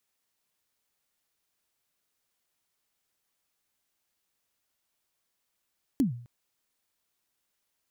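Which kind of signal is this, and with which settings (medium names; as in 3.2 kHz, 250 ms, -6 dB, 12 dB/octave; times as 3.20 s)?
kick drum length 0.26 s, from 300 Hz, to 120 Hz, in 124 ms, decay 0.52 s, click on, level -18 dB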